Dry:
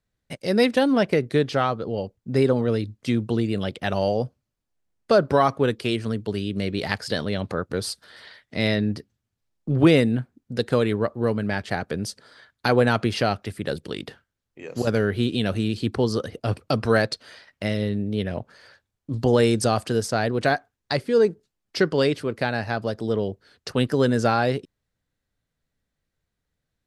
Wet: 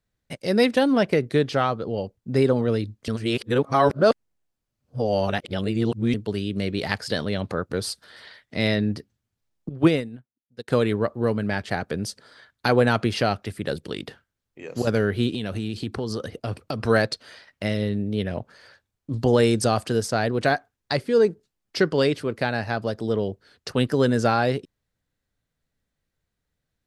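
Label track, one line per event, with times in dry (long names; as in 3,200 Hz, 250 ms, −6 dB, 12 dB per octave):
3.080000	6.140000	reverse
9.690000	10.680000	expander for the loud parts 2.5 to 1, over −33 dBFS
15.330000	16.800000	downward compressor 4 to 1, threshold −24 dBFS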